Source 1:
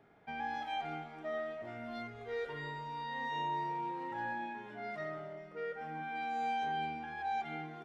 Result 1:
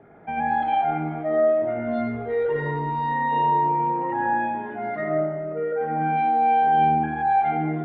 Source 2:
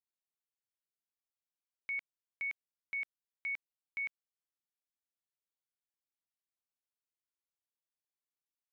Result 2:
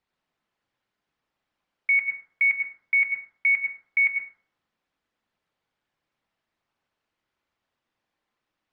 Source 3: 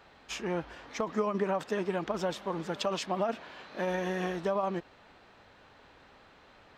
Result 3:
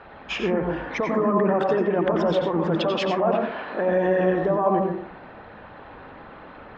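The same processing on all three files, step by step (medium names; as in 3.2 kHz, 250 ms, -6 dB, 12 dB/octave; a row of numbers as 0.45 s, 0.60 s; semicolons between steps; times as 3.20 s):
resonances exaggerated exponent 1.5; low-pass 2.9 kHz 12 dB/octave; peak limiter -27.5 dBFS; plate-style reverb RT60 0.59 s, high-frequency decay 0.25×, pre-delay 80 ms, DRR 2 dB; normalise loudness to -23 LUFS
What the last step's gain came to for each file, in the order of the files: +13.5 dB, +18.5 dB, +12.5 dB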